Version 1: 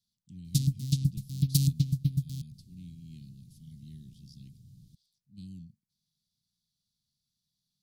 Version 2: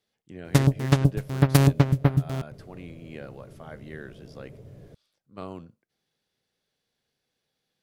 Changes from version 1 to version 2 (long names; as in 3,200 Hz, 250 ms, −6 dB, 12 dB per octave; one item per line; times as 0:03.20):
background: add low-shelf EQ 180 Hz +9 dB
master: remove elliptic band-stop filter 190–4,100 Hz, stop band 50 dB